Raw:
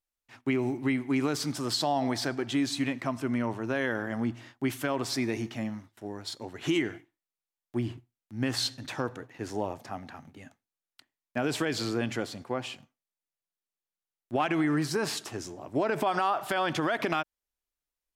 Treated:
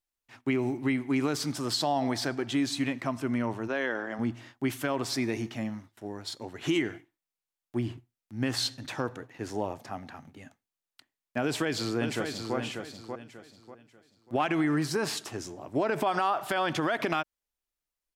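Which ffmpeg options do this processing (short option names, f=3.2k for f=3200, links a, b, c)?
-filter_complex "[0:a]asplit=3[a][b][c];[a]afade=t=out:st=3.67:d=0.02[d];[b]highpass=290,lowpass=6.6k,afade=t=in:st=3.67:d=0.02,afade=t=out:st=4.18:d=0.02[e];[c]afade=t=in:st=4.18:d=0.02[f];[d][e][f]amix=inputs=3:normalize=0,asplit=2[g][h];[h]afade=t=in:st=11.42:d=0.01,afade=t=out:st=12.56:d=0.01,aecho=0:1:590|1180|1770|2360:0.501187|0.150356|0.0451069|0.0135321[i];[g][i]amix=inputs=2:normalize=0"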